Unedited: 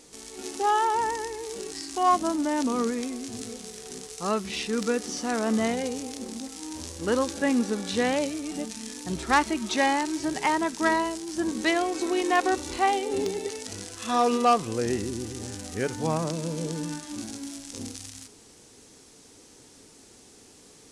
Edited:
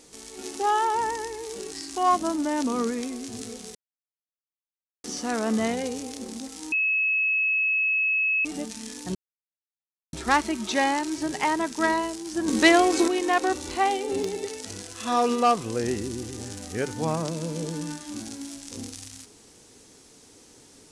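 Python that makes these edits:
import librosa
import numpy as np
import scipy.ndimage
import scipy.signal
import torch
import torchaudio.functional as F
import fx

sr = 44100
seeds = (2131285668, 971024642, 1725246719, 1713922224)

y = fx.edit(x, sr, fx.silence(start_s=3.75, length_s=1.29),
    fx.bleep(start_s=6.72, length_s=1.73, hz=2580.0, db=-20.5),
    fx.insert_silence(at_s=9.15, length_s=0.98),
    fx.clip_gain(start_s=11.5, length_s=0.6, db=7.5), tone=tone)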